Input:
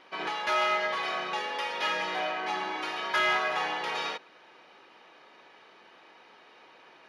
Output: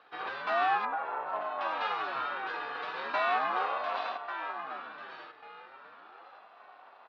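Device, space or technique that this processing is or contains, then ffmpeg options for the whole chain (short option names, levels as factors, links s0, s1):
voice changer toy: -filter_complex "[0:a]asettb=1/sr,asplit=3[s0][s1][s2];[s0]atrim=end=0.854[s3];[s1]atrim=start=0.85:end=1.61,asetpts=PTS-STARTPTS,afade=t=in:d=0.004:c=qsin,afade=t=out:st=0.756:d=0.004:c=qsin,lowpass=1400[s4];[s2]atrim=start=1.606[s5];[s3][s4]acrossfade=d=0.004:c1=hsin:c2=qsin[s6];[s6][s5]acrossfade=d=0.004:c1=qsin:c2=hsin,asplit=2[s7][s8];[s8]adelay=1143,lowpass=f=3700:p=1,volume=0.398,asplit=2[s9][s10];[s10]adelay=1143,lowpass=f=3700:p=1,volume=0.28,asplit=2[s11][s12];[s12]adelay=1143,lowpass=f=3700:p=1,volume=0.28[s13];[s7][s9][s11][s13]amix=inputs=4:normalize=0,aeval=exprs='val(0)*sin(2*PI*510*n/s+510*0.6/0.37*sin(2*PI*0.37*n/s))':c=same,highpass=490,equalizer=f=760:t=q:w=4:g=9,equalizer=f=1200:t=q:w=4:g=5,equalizer=f=2100:t=q:w=4:g=-9,equalizer=f=3100:t=q:w=4:g=-7,lowpass=f=3700:w=0.5412,lowpass=f=3700:w=1.3066"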